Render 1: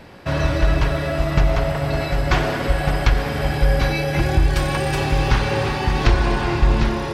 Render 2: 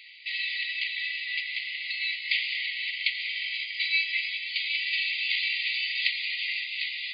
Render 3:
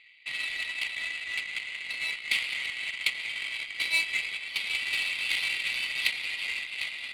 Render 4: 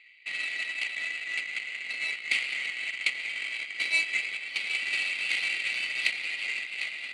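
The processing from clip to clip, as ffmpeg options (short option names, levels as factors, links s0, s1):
-filter_complex "[0:a]asplit=2[s0][s1];[s1]alimiter=limit=0.158:level=0:latency=1,volume=0.708[s2];[s0][s2]amix=inputs=2:normalize=0,afftfilt=real='re*between(b*sr/4096,1900,4900)':imag='im*between(b*sr/4096,1900,4900)':win_size=4096:overlap=0.75"
-af "adynamicsmooth=sensitivity=3:basefreq=1900"
-af "highpass=210,equalizer=f=1000:t=q:w=4:g=-8,equalizer=f=3500:t=q:w=4:g=-8,equalizer=f=5100:t=q:w=4:g=-4,lowpass=f=8400:w=0.5412,lowpass=f=8400:w=1.3066,volume=1.26"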